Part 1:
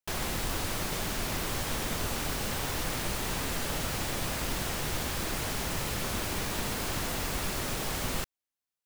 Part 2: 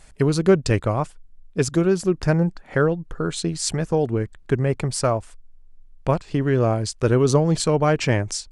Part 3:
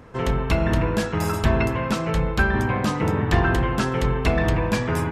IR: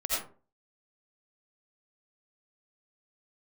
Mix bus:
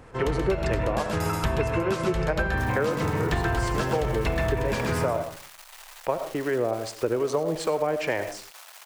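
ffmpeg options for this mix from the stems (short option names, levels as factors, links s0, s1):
-filter_complex "[0:a]aeval=exprs='max(val(0),0)':c=same,highpass=f=710:w=0.5412,highpass=f=710:w=1.3066,adelay=2500,volume=0.447[s0];[1:a]equalizer=f=1300:w=1.5:g=-4.5,acrossover=split=540[s1][s2];[s1]aeval=exprs='val(0)*(1-0.5/2+0.5/2*cos(2*PI*2.4*n/s))':c=same[s3];[s2]aeval=exprs='val(0)*(1-0.5/2-0.5/2*cos(2*PI*2.4*n/s))':c=same[s4];[s3][s4]amix=inputs=2:normalize=0,acrossover=split=350 2500:gain=0.126 1 0.2[s5][s6][s7];[s5][s6][s7]amix=inputs=3:normalize=0,volume=1.41,asplit=2[s8][s9];[s9]volume=0.178[s10];[2:a]equalizer=f=210:t=o:w=0.77:g=-5,volume=0.75,asplit=3[s11][s12][s13];[s12]volume=0.0668[s14];[s13]volume=0.631[s15];[3:a]atrim=start_sample=2205[s16];[s10][s14]amix=inputs=2:normalize=0[s17];[s17][s16]afir=irnorm=-1:irlink=0[s18];[s15]aecho=0:1:129|258|387|516:1|0.22|0.0484|0.0106[s19];[s0][s8][s11][s18][s19]amix=inputs=5:normalize=0,acompressor=threshold=0.0891:ratio=6"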